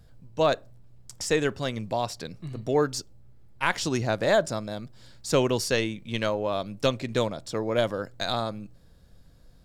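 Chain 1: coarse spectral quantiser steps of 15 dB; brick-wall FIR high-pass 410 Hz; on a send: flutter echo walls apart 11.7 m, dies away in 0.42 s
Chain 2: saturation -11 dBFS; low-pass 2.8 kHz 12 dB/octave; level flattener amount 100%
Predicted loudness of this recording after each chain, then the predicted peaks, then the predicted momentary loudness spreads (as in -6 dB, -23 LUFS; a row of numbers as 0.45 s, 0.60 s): -28.5 LUFS, -21.0 LUFS; -9.5 dBFS, -3.5 dBFS; 14 LU, 5 LU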